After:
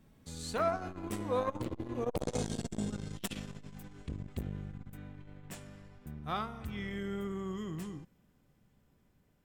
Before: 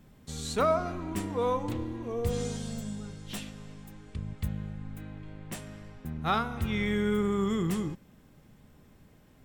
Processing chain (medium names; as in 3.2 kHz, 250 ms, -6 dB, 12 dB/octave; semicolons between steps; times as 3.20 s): Doppler pass-by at 2.80 s, 16 m/s, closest 13 m; transformer saturation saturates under 620 Hz; trim +5 dB